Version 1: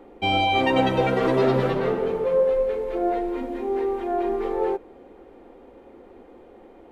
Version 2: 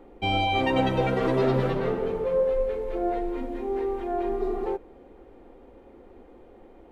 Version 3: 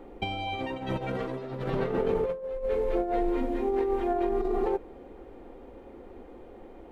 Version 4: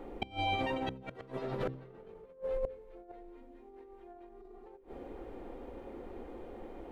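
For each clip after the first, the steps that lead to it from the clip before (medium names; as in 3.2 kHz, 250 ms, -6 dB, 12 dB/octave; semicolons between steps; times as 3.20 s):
spectral replace 4.42–4.64 s, 220–3600 Hz before; bass shelf 100 Hz +10.5 dB; trim -4 dB
compressor with a negative ratio -28 dBFS, ratio -0.5
inverted gate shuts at -22 dBFS, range -26 dB; de-hum 65.14 Hz, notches 8; trim +1 dB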